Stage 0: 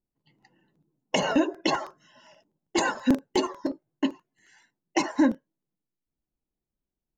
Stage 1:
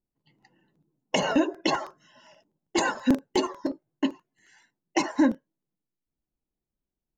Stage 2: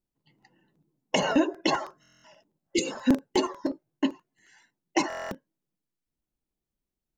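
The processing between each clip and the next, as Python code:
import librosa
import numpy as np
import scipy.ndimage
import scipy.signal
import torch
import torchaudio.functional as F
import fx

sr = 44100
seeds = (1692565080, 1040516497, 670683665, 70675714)

y1 = x
y2 = fx.spec_repair(y1, sr, seeds[0], start_s=2.65, length_s=0.26, low_hz=550.0, high_hz=2000.0, source='both')
y2 = fx.buffer_glitch(y2, sr, at_s=(2.01, 5.08), block=1024, repeats=9)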